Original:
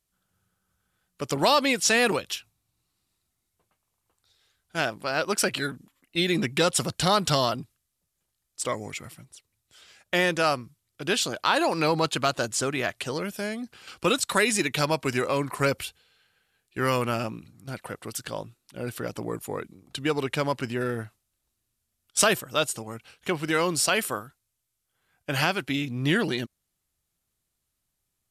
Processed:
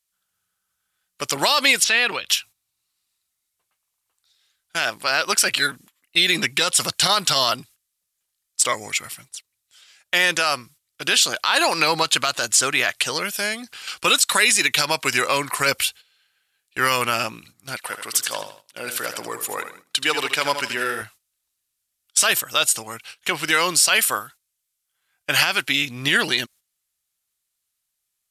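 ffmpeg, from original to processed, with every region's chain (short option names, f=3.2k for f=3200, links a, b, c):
-filter_complex "[0:a]asettb=1/sr,asplit=3[a][b][c];[a]atrim=end=1.844[d];[b]atrim=start=1.84:end=2.29,asetpts=PTS-STARTPTS,afade=t=in:d=0.004:c=qsin,afade=t=out:st=0.446:d=0.004:c=qsin,highshelf=f=5k:t=q:w=1.5:g=-12.5,acompressor=threshold=-39dB:ratio=1.5:attack=3.2:release=140:knee=1:detection=peak[e];[c]atrim=start=2.286[f];[d][e]acrossfade=d=0.004:c1=hsin:c2=qsin[g];[g][f]acrossfade=d=0.004:c1=qsin:c2=hsin,asettb=1/sr,asplit=3[h][i][j];[h]atrim=end=17.764[k];[i]atrim=start=17.76:end=21.02,asetpts=PTS-STARTPTS,afade=t=in:d=0.004:c=qsin,afade=t=out:st=3.256:d=0.004:c=qsin,highpass=f=300:p=1,aecho=1:1:78|156|234|312:0.355|0.128|0.046|0.0166,atrim=end_sample=143766[l];[j]atrim=start=21.016[m];[k][l]acrossfade=d=0.004:c1=hsin:c2=qsin[n];[n][m]acrossfade=d=0.004:c1=qsin:c2=hsin,agate=range=-11dB:threshold=-50dB:ratio=16:detection=peak,tiltshelf=f=770:g=-9.5,alimiter=level_in=9.5dB:limit=-1dB:release=50:level=0:latency=1,volume=-4.5dB"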